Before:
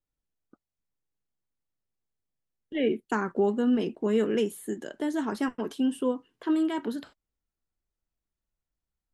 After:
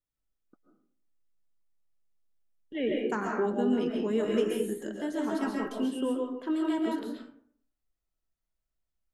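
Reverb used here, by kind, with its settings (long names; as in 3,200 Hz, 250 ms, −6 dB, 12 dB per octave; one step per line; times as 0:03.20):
comb and all-pass reverb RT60 0.61 s, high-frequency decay 0.5×, pre-delay 95 ms, DRR −1 dB
level −4.5 dB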